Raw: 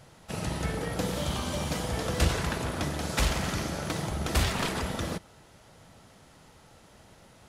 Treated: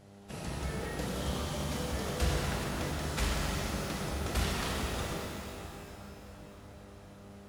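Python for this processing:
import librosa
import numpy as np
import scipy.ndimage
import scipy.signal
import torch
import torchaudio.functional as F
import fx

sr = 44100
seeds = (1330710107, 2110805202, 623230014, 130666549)

y = fx.dmg_buzz(x, sr, base_hz=100.0, harmonics=8, level_db=-50.0, tilt_db=-5, odd_only=False)
y = fx.echo_wet_lowpass(y, sr, ms=638, feedback_pct=70, hz=1400.0, wet_db=-16.5)
y = fx.rev_shimmer(y, sr, seeds[0], rt60_s=2.7, semitones=12, shimmer_db=-8, drr_db=-1.0)
y = F.gain(torch.from_numpy(y), -8.5).numpy()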